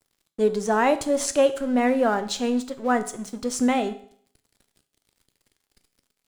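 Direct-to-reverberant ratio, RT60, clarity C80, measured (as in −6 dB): 10.0 dB, 0.55 s, 18.0 dB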